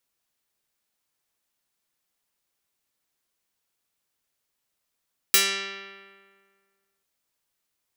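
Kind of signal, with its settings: plucked string G3, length 1.69 s, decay 1.84 s, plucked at 0.38, medium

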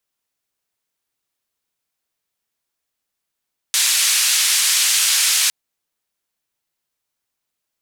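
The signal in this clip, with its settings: noise band 2.2–9.6 kHz, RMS -16.5 dBFS 1.76 s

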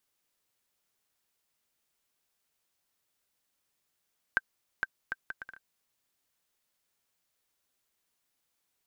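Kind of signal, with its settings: bouncing ball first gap 0.46 s, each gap 0.63, 1.56 kHz, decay 34 ms -12.5 dBFS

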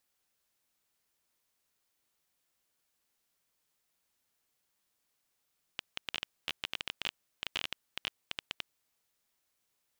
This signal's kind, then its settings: random clicks 14 per s -16.5 dBFS 2.85 s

